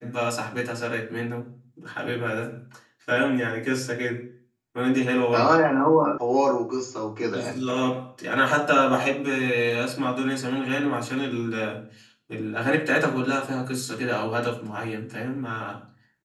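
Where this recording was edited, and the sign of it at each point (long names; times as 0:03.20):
0:06.18: cut off before it has died away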